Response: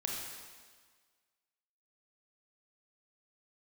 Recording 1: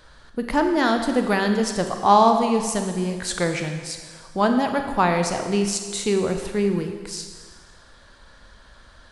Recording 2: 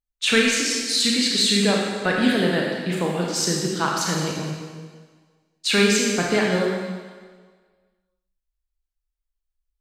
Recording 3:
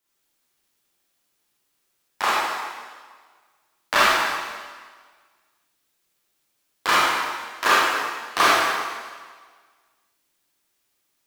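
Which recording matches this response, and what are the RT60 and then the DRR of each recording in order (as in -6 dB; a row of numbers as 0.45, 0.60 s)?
2; 1.6, 1.6, 1.6 s; 5.0, -2.0, -8.5 dB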